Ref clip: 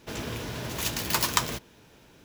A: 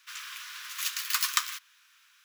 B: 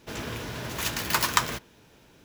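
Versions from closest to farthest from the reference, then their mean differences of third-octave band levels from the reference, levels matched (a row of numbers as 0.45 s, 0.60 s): B, A; 1.5 dB, 17.5 dB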